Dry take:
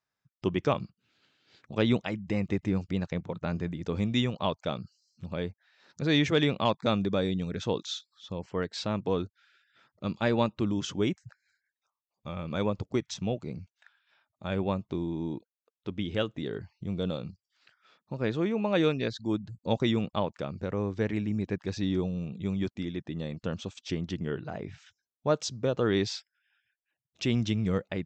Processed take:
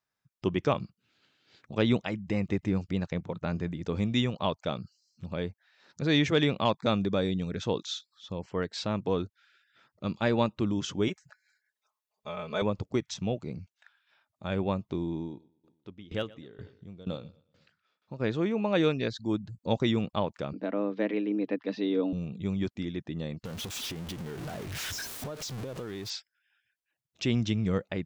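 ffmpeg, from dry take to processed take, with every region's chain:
-filter_complex "[0:a]asettb=1/sr,asplit=3[a][b][c];[a]atrim=end=11.084[d];[b]atrim=start=11.08:end=12.62,asetpts=PTS-STARTPTS,afade=t=in:d=0.004:c=qsin,afade=t=out:st=1.536:d=0.004:c=qsin,lowshelf=f=340:t=q:w=1.5:g=-8.5,aecho=1:1:4.7:0.92,atrim=end_sample=67914[e];[c]atrim=start=12.616[f];[d][e]acrossfade=d=0.004:c1=hsin:c2=qsin[g];[g][f]acrossfade=d=0.004:c1=qsin:c2=hsin,asettb=1/sr,asplit=3[h][i][j];[h]atrim=end=15.164[k];[i]atrim=start=15.16:end=18.2,asetpts=PTS-STARTPTS,afade=t=in:d=0.004:c=qsin,afade=t=out:st=3.036:d=0.004:c=qsin,asoftclip=type=hard:threshold=-17dB,aecho=1:1:120|240|360|480:0.15|0.0703|0.0331|0.0155,atrim=end_sample=134064,aeval=exprs='val(0)*pow(10,-19*if(lt(mod(2.1*n/s,1),2*abs(2.1)/1000),1-mod(2.1*n/s,1)/(2*abs(2.1)/1000),(mod(2.1*n/s,1)-2*abs(2.1)/1000)/(1-2*abs(2.1)/1000))/20)':c=same[l];[j]atrim=start=18.196[m];[k][l]acrossfade=d=0.004:c1=hsin:c2=qsin[n];[n][m]acrossfade=d=0.004:c1=qsin:c2=hsin,asettb=1/sr,asplit=3[o][p][q];[o]atrim=end=20.534[r];[p]atrim=start=20.53:end=22.13,asetpts=PTS-STARTPTS,afade=t=in:d=0.004:c=qsin,afade=t=out:st=1.596:d=0.004:c=qsin,lowpass=f=4k:w=0.5412,lowpass=f=4k:w=1.3066,aecho=1:1:5.5:0.31,atrim=end_sample=70560,afreqshift=100[s];[q]atrim=start=22.126[t];[r][s]acrossfade=d=0.004:c1=hsin:c2=qsin[u];[u][t]acrossfade=d=0.004:c1=qsin:c2=hsin,asettb=1/sr,asplit=3[v][w][x];[v]atrim=end=23.454[y];[w]atrim=start=23.45:end=26.1,asetpts=PTS-STARTPTS,afade=t=in:d=0.004:c=qsin,afade=t=out:st=2.646:d=0.004:c=qsin,aeval=exprs='val(0)+0.5*0.0335*sgn(val(0))':c=same,acompressor=threshold=-35dB:ratio=8:attack=3.2:release=140:knee=1:detection=peak[z];[x]atrim=start=26.096[aa];[y][z]acrossfade=d=0.004:c1=hsin:c2=qsin[ab];[ab][aa]acrossfade=d=0.004:c1=qsin:c2=hsin"

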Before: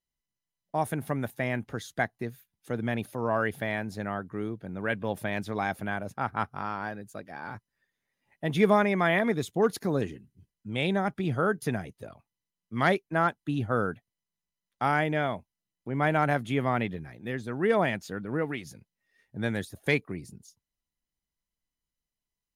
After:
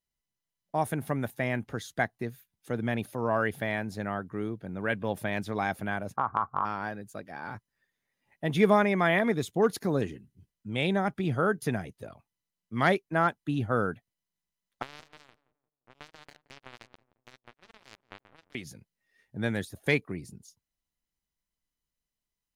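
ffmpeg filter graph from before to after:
-filter_complex "[0:a]asettb=1/sr,asplit=3[a][b][c];[a]atrim=end=6.164[d];[b]atrim=start=6.16:end=6.65,asetpts=PTS-STARTPTS,afade=t=in:d=0.004:c=qsin,afade=t=out:st=0.486:d=0.004:c=qsin,lowpass=f=1.1k:t=q:w=11,acompressor=threshold=-22dB:ratio=5:attack=3.2:release=140:knee=1:detection=peak[e];[c]atrim=start=6.646[f];[d][e]acrossfade=d=0.004:c1=hsin:c2=qsin[g];[g][f]acrossfade=d=0.004:c1=qsin:c2=hsin,asettb=1/sr,asplit=3[h][i][j];[h]atrim=end=14.824[k];[i]atrim=start=14.82:end=18.55,asetpts=PTS-STARTPTS,afade=t=in:d=0.004:c=qsin,afade=t=out:st=3.726:d=0.004:c=qsin,acompressor=threshold=-30dB:ratio=12:attack=3.2:release=140:knee=1:detection=peak,acrusher=bits=3:mix=0:aa=0.5,asplit=2[l][m];[m]adelay=174,lowpass=f=940:p=1,volume=-15.5dB,asplit=2[n][o];[o]adelay=174,lowpass=f=940:p=1,volume=0.41,asplit=2[p][q];[q]adelay=174,lowpass=f=940:p=1,volume=0.41,asplit=2[r][s];[s]adelay=174,lowpass=f=940:p=1,volume=0.41[t];[l][n][p][r][t]amix=inputs=5:normalize=0,atrim=end_sample=164493[u];[j]atrim=start=18.546[v];[k][u]acrossfade=d=0.004:c1=hsin:c2=qsin[w];[w][v]acrossfade=d=0.004:c1=qsin:c2=hsin"

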